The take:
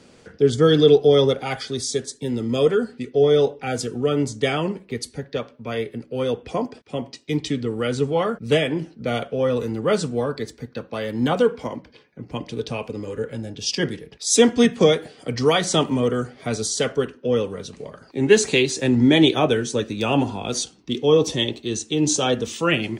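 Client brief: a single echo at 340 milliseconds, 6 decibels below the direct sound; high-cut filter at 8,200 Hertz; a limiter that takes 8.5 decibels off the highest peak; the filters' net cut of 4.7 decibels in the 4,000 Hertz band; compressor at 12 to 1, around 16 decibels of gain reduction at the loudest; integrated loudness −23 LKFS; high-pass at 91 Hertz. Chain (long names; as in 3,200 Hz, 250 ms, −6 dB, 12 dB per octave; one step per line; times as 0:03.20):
high-pass filter 91 Hz
low-pass filter 8,200 Hz
parametric band 4,000 Hz −6 dB
downward compressor 12 to 1, threshold −25 dBFS
brickwall limiter −23.5 dBFS
single-tap delay 340 ms −6 dB
level +9.5 dB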